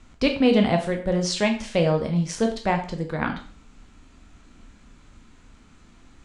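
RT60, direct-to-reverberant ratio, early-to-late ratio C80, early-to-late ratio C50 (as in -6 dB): 0.45 s, 3.5 dB, 13.5 dB, 9.5 dB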